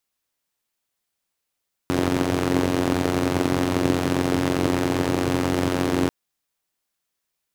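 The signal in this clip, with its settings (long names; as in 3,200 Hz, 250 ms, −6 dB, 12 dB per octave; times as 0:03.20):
pulse-train model of a four-cylinder engine, steady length 4.19 s, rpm 2,700, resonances 140/280 Hz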